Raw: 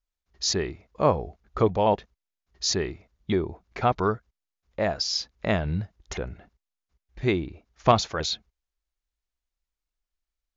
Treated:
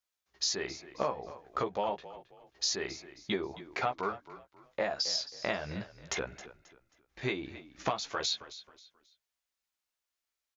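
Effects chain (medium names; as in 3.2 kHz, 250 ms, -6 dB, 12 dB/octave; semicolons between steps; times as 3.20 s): high-pass 680 Hz 6 dB/octave; compression 10:1, threshold -32 dBFS, peak gain reduction 17 dB; doubling 15 ms -5 dB; on a send: frequency-shifting echo 268 ms, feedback 32%, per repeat -34 Hz, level -15.5 dB; on the sum: trim +2.5 dB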